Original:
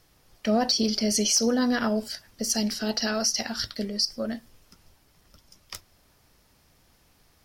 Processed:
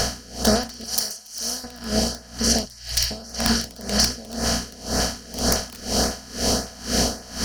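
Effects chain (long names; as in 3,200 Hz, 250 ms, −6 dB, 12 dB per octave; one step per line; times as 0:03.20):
compressor on every frequency bin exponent 0.2
speech leveller 2 s
wrap-around overflow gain 6.5 dB
mains hum 60 Hz, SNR 11 dB
low-shelf EQ 180 Hz +5 dB
auto-filter notch saw up 1.8 Hz 250–3,600 Hz
0:00.84–0:01.64: first-order pre-emphasis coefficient 0.9
0:02.65–0:03.11: elliptic band-stop filter 110–2,000 Hz
delay with a band-pass on its return 313 ms, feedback 84%, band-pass 1,400 Hz, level −14.5 dB
convolution reverb RT60 0.40 s, pre-delay 8 ms, DRR 13.5 dB
tremolo with a sine in dB 2 Hz, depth 23 dB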